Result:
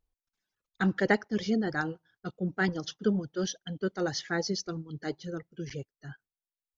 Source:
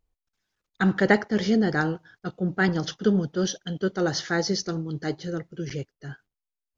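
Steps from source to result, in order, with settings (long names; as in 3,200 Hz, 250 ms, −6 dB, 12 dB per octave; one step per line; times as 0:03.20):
reverb reduction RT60 1.2 s
level −5 dB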